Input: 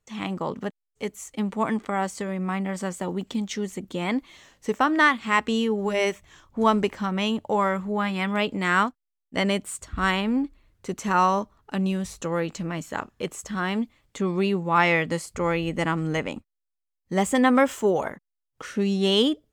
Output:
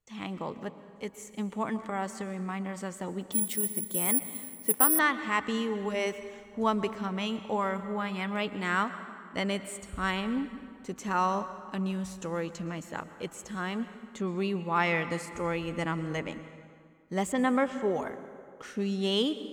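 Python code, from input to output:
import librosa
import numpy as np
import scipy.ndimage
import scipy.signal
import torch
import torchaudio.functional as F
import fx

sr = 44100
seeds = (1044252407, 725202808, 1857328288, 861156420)

y = fx.air_absorb(x, sr, metres=140.0, at=(17.32, 17.91))
y = fx.rev_plate(y, sr, seeds[0], rt60_s=2.2, hf_ratio=0.65, predelay_ms=105, drr_db=12.0)
y = fx.resample_bad(y, sr, factor=4, down='filtered', up='zero_stuff', at=(3.32, 4.99))
y = y * librosa.db_to_amplitude(-7.0)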